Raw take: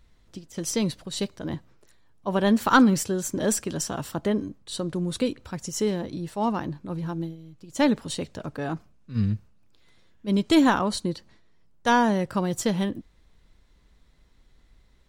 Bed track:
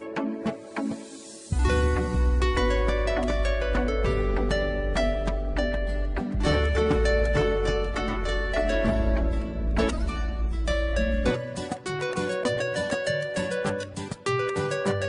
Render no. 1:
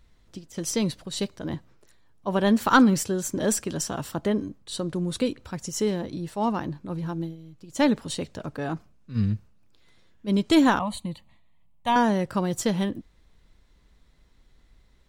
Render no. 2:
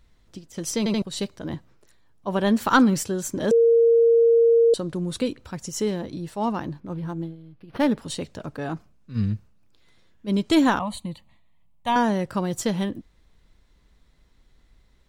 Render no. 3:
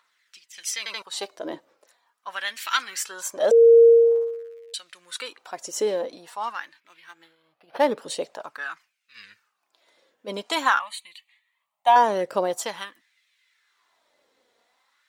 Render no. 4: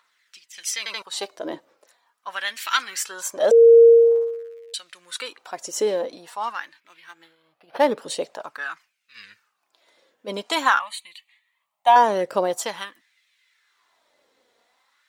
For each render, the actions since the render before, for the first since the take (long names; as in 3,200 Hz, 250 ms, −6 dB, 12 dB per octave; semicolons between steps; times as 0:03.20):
0:10.79–0:11.96: phaser with its sweep stopped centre 1,500 Hz, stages 6
0:00.78: stutter in place 0.08 s, 3 plays; 0:03.51–0:04.74: beep over 463 Hz −13 dBFS; 0:06.80–0:07.98: linearly interpolated sample-rate reduction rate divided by 6×
phase shifter 0.24 Hz, delay 4.3 ms, feedback 36%; auto-filter high-pass sine 0.47 Hz 480–2,300 Hz
level +2 dB